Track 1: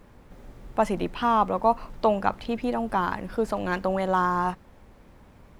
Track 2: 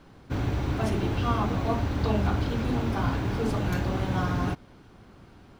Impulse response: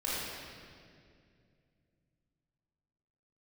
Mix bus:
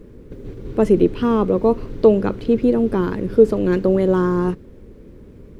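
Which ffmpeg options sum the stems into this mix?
-filter_complex "[0:a]volume=-0.5dB,asplit=2[link_01][link_02];[1:a]lowpass=8800,acrossover=split=490[link_03][link_04];[link_03]acompressor=threshold=-33dB:ratio=6[link_05];[link_05][link_04]amix=inputs=2:normalize=0,volume=-12.5dB[link_06];[link_02]apad=whole_len=246629[link_07];[link_06][link_07]sidechaingate=range=-33dB:threshold=-44dB:ratio=16:detection=peak[link_08];[link_01][link_08]amix=inputs=2:normalize=0,lowshelf=frequency=570:width_type=q:width=3:gain=10"

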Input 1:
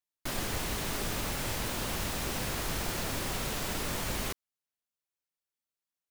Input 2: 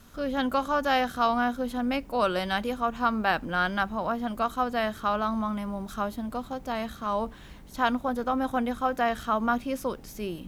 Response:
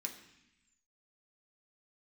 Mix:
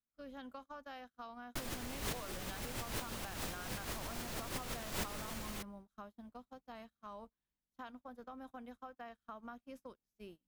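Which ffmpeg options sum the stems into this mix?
-filter_complex "[0:a]alimiter=level_in=0.5dB:limit=-24dB:level=0:latency=1:release=69,volume=-0.5dB,adelay=1300,volume=0dB[link_01];[1:a]acompressor=threshold=-31dB:ratio=6,volume=-15.5dB,asplit=3[link_02][link_03][link_04];[link_03]volume=-17dB[link_05];[link_04]apad=whole_len=326388[link_06];[link_01][link_06]sidechaincompress=threshold=-57dB:ratio=8:attack=7.6:release=145[link_07];[2:a]atrim=start_sample=2205[link_08];[link_05][link_08]afir=irnorm=-1:irlink=0[link_09];[link_07][link_02][link_09]amix=inputs=3:normalize=0,agate=range=-33dB:threshold=-50dB:ratio=16:detection=peak"

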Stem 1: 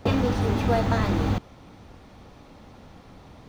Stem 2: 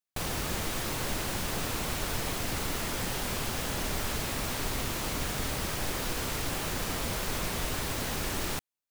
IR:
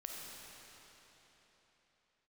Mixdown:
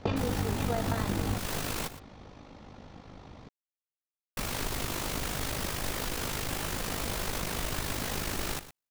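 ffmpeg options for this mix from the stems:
-filter_complex "[0:a]lowpass=frequency=7200:width=0.5412,lowpass=frequency=7200:width=1.3066,volume=1dB[link_01];[1:a]aeval=exprs='clip(val(0),-1,0.0299)':channel_layout=same,volume=2.5dB,asplit=3[link_02][link_03][link_04];[link_02]atrim=end=1.88,asetpts=PTS-STARTPTS,afade=type=out:start_time=1.876:duration=0.004:curve=hsin[link_05];[link_03]atrim=start=1.88:end=4.37,asetpts=PTS-STARTPTS,volume=0[link_06];[link_04]atrim=start=4.37,asetpts=PTS-STARTPTS,afade=type=in:duration=0.004:curve=hsin[link_07];[link_05][link_06][link_07]concat=n=3:v=0:a=1,asplit=2[link_08][link_09];[link_09]volume=-14.5dB,aecho=0:1:117:1[link_10];[link_01][link_08][link_10]amix=inputs=3:normalize=0,tremolo=f=51:d=0.571,acompressor=threshold=-26dB:ratio=6"

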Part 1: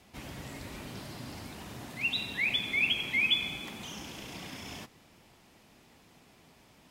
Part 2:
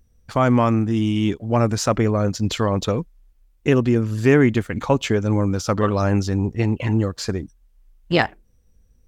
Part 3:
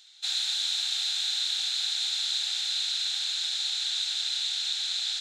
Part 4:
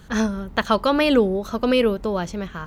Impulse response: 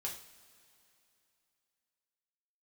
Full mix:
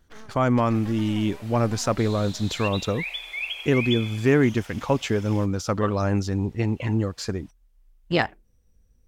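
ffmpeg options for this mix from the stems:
-filter_complex "[0:a]highpass=frequency=530:width=0.5412,highpass=frequency=530:width=1.3066,adelay=600,volume=-2.5dB[link_01];[1:a]volume=-4dB[link_02];[2:a]adelay=1750,volume=-14dB[link_03];[3:a]acompressor=threshold=-19dB:ratio=6,aeval=exprs='abs(val(0))':channel_layout=same,volume=-18dB,asplit=2[link_04][link_05];[link_05]apad=whole_len=306835[link_06];[link_03][link_06]sidechaingate=range=-33dB:threshold=-52dB:ratio=16:detection=peak[link_07];[link_01][link_02][link_07][link_04]amix=inputs=4:normalize=0"

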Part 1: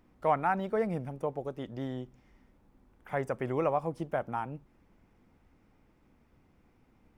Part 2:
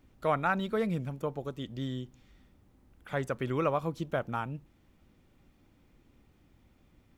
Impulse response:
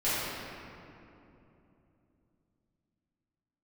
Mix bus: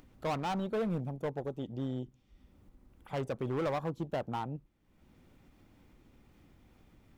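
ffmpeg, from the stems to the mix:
-filter_complex "[0:a]afwtdn=0.00891,asoftclip=type=hard:threshold=-30.5dB,volume=-1dB[link_01];[1:a]volume=-11.5dB[link_02];[link_01][link_02]amix=inputs=2:normalize=0,acompressor=mode=upward:threshold=-48dB:ratio=2.5"

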